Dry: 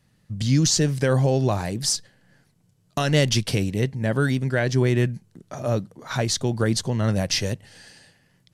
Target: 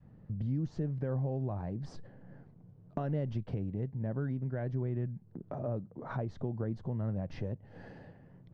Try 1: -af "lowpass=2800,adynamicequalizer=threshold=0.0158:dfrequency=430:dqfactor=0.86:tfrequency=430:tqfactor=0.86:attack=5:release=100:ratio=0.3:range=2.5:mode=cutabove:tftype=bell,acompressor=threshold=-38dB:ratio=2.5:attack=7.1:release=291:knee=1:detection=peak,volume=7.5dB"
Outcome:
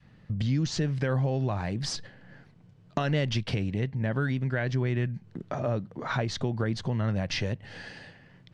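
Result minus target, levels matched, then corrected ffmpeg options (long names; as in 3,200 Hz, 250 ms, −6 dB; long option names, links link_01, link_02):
2,000 Hz band +11.0 dB; downward compressor: peak gain reduction −6.5 dB
-af "lowpass=760,adynamicequalizer=threshold=0.0158:dfrequency=430:dqfactor=0.86:tfrequency=430:tqfactor=0.86:attack=5:release=100:ratio=0.3:range=2.5:mode=cutabove:tftype=bell,acompressor=threshold=-49dB:ratio=2.5:attack=7.1:release=291:knee=1:detection=peak,volume=7.5dB"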